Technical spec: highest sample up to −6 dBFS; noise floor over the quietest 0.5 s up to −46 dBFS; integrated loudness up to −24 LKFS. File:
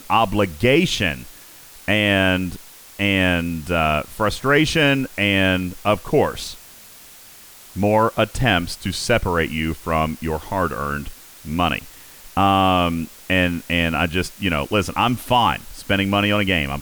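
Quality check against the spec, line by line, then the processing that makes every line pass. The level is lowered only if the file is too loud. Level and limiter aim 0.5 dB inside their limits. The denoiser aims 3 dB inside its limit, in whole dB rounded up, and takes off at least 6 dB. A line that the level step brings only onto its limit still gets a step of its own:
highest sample −5.0 dBFS: out of spec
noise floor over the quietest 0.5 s −44 dBFS: out of spec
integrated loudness −19.5 LKFS: out of spec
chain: level −5 dB

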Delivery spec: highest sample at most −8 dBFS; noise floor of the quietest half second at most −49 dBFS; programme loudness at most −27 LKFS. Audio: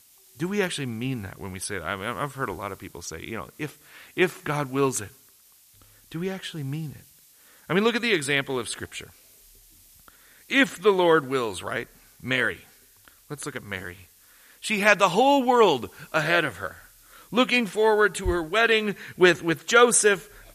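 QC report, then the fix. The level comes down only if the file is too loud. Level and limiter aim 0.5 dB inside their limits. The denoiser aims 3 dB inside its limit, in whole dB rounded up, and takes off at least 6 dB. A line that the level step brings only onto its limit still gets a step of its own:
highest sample −4.0 dBFS: out of spec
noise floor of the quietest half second −56 dBFS: in spec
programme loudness −23.5 LKFS: out of spec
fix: level −4 dB
brickwall limiter −8.5 dBFS

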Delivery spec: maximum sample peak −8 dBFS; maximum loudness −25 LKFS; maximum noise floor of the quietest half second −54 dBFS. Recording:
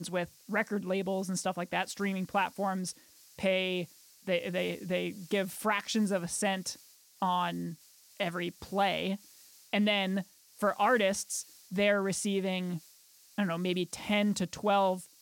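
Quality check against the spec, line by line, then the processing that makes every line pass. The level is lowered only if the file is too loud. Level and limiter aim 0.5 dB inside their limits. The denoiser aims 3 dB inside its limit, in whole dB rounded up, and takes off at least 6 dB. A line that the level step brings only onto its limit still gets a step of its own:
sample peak −17.0 dBFS: in spec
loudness −32.0 LKFS: in spec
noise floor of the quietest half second −60 dBFS: in spec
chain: no processing needed

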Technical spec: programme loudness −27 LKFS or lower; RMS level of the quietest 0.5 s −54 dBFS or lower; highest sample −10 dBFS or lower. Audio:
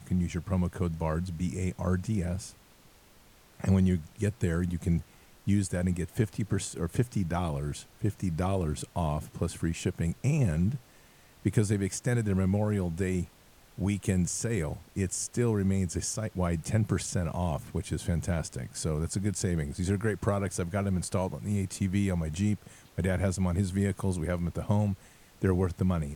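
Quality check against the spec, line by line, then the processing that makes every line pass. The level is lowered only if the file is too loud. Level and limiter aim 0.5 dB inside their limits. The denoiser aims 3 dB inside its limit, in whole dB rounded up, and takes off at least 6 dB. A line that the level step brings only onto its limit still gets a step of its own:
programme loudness −30.5 LKFS: in spec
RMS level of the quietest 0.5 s −58 dBFS: in spec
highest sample −11.5 dBFS: in spec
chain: no processing needed

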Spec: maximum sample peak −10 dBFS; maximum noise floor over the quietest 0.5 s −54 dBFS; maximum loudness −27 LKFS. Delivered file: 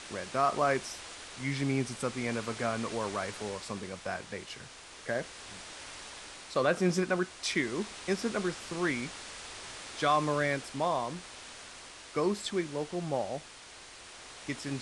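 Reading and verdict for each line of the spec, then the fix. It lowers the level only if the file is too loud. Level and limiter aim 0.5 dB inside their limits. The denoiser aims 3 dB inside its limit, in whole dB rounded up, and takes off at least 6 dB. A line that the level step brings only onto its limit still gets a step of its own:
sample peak −14.5 dBFS: in spec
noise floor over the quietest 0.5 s −50 dBFS: out of spec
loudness −33.0 LKFS: in spec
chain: broadband denoise 7 dB, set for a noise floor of −50 dBFS

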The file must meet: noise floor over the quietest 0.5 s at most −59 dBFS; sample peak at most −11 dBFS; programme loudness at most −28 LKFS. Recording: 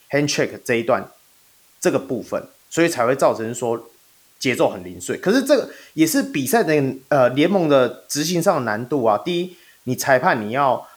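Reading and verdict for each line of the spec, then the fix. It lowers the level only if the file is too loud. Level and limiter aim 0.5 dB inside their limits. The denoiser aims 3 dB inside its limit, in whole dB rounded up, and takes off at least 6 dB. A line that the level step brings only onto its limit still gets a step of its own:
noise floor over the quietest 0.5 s −54 dBFS: out of spec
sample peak −3.0 dBFS: out of spec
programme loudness −19.5 LKFS: out of spec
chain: level −9 dB

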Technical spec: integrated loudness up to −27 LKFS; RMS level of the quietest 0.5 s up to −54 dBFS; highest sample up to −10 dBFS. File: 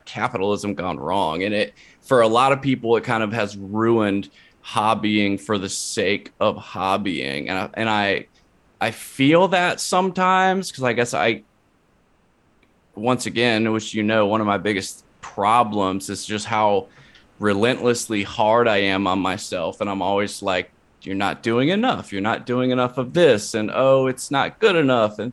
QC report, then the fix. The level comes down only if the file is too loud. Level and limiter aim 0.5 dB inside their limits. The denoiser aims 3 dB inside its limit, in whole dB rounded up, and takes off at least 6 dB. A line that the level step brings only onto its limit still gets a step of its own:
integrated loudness −20.5 LKFS: out of spec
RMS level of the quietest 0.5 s −60 dBFS: in spec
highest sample −4.5 dBFS: out of spec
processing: level −7 dB

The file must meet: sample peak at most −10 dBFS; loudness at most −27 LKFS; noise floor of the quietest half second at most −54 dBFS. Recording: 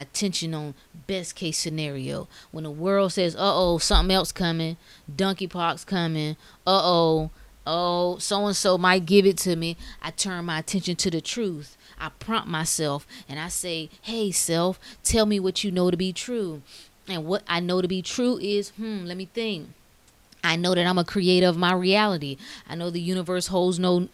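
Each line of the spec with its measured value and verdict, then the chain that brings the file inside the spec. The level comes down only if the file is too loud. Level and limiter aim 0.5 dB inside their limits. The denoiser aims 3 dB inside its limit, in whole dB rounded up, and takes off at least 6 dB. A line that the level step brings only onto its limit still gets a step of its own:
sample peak −3.5 dBFS: out of spec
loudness −24.5 LKFS: out of spec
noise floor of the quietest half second −57 dBFS: in spec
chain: level −3 dB
brickwall limiter −10.5 dBFS

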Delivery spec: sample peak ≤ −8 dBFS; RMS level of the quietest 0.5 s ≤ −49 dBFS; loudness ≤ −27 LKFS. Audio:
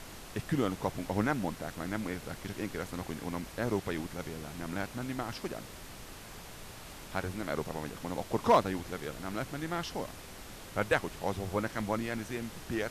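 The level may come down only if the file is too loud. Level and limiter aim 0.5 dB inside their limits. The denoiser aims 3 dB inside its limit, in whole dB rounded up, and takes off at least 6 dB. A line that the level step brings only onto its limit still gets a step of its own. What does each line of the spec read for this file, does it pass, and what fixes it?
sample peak −15.0 dBFS: in spec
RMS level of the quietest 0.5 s −47 dBFS: out of spec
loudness −35.0 LKFS: in spec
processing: broadband denoise 6 dB, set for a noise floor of −47 dBFS

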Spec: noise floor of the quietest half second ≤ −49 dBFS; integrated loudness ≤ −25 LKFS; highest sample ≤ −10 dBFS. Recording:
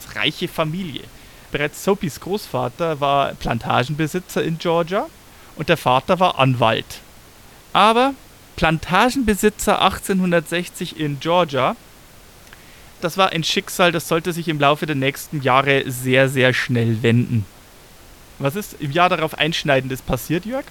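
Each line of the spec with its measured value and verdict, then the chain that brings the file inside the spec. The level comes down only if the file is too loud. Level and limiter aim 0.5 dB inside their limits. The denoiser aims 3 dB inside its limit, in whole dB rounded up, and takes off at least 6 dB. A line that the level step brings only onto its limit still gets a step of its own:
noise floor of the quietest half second −45 dBFS: out of spec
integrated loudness −19.0 LKFS: out of spec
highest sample −1.5 dBFS: out of spec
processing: level −6.5 dB
brickwall limiter −10.5 dBFS

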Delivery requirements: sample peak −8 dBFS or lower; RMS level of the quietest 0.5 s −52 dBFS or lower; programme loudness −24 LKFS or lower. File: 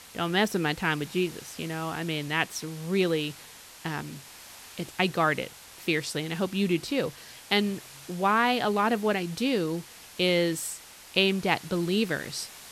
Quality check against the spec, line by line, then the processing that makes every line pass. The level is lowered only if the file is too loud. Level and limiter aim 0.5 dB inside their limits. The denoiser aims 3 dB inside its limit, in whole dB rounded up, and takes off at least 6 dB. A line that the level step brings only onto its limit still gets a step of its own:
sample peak −7.0 dBFS: out of spec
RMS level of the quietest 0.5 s −48 dBFS: out of spec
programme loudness −28.0 LKFS: in spec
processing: broadband denoise 7 dB, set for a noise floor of −48 dBFS
brickwall limiter −8.5 dBFS

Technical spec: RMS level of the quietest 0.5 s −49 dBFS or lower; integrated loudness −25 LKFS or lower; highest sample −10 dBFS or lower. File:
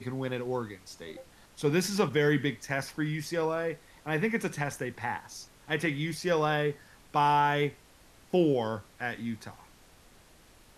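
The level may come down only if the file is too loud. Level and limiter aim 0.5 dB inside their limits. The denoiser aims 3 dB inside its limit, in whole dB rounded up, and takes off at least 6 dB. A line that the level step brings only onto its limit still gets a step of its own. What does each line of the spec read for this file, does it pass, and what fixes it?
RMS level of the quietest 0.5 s −57 dBFS: in spec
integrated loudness −30.0 LKFS: in spec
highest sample −13.5 dBFS: in spec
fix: no processing needed

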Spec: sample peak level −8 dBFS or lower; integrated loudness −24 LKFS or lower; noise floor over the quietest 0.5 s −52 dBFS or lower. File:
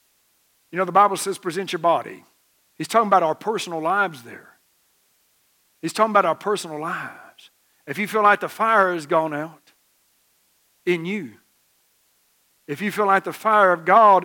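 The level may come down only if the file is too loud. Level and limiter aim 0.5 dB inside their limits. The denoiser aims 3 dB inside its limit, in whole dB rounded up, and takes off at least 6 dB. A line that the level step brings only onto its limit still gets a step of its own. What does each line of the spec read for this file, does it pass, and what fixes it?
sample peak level −3.0 dBFS: out of spec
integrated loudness −20.5 LKFS: out of spec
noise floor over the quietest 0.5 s −64 dBFS: in spec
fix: level −4 dB
brickwall limiter −8.5 dBFS

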